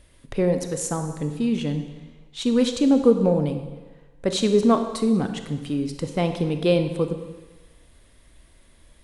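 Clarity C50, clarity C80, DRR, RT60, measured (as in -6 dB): 8.0 dB, 10.0 dB, 7.0 dB, 1.3 s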